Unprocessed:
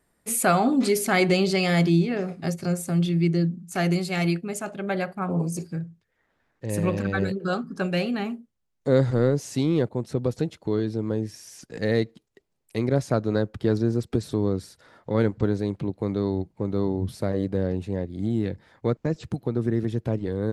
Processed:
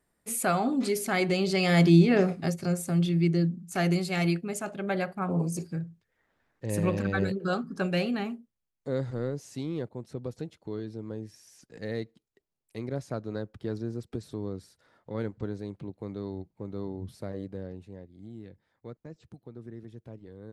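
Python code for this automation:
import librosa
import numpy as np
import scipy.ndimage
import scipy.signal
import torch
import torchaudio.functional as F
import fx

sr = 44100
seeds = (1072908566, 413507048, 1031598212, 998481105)

y = fx.gain(x, sr, db=fx.line((1.35, -6.0), (2.21, 5.5), (2.52, -2.5), (8.13, -2.5), (8.93, -11.0), (17.36, -11.0), (18.2, -19.0)))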